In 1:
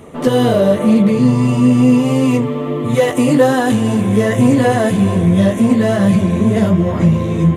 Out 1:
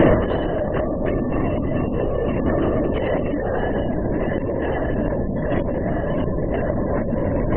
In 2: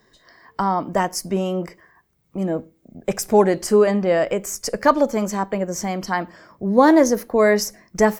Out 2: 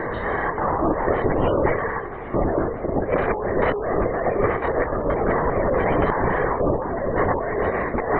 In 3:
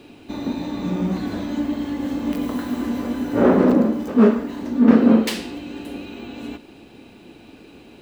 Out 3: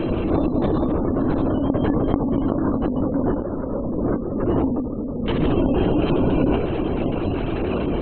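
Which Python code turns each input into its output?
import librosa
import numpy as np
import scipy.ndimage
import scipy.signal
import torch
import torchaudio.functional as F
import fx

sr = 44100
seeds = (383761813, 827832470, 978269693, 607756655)

p1 = fx.bin_compress(x, sr, power=0.4)
p2 = fx.highpass(p1, sr, hz=160.0, slope=6)
p3 = p2 + fx.room_early_taps(p2, sr, ms=(17, 63), db=(-12.0, -10.0), dry=0)
p4 = fx.spec_gate(p3, sr, threshold_db=-25, keep='strong')
p5 = fx.over_compress(p4, sr, threshold_db=-18.0, ratio=-1.0)
p6 = fx.lpc_vocoder(p5, sr, seeds[0], excitation='whisper', order=16)
p7 = fx.end_taper(p6, sr, db_per_s=190.0)
y = p7 * librosa.db_to_amplitude(-3.0)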